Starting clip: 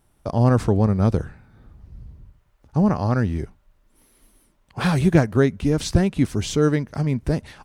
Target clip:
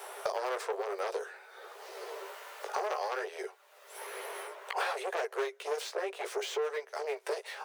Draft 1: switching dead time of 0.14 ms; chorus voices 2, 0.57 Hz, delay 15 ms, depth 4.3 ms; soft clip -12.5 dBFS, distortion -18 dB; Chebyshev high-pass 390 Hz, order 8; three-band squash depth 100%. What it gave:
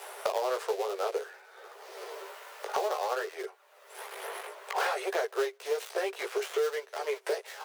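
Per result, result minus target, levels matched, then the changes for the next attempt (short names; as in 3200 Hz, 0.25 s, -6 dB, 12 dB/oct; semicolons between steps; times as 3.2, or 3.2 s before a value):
switching dead time: distortion +14 dB; soft clip: distortion -10 dB
change: switching dead time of 0.027 ms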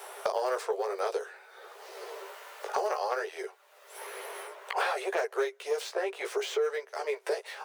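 soft clip: distortion -10 dB
change: soft clip -22.5 dBFS, distortion -8 dB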